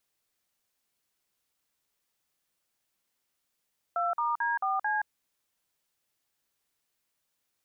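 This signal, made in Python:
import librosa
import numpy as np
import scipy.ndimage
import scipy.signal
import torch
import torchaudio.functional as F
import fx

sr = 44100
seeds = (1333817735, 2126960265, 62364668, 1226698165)

y = fx.dtmf(sr, digits='2*D4C', tone_ms=173, gap_ms=48, level_db=-28.5)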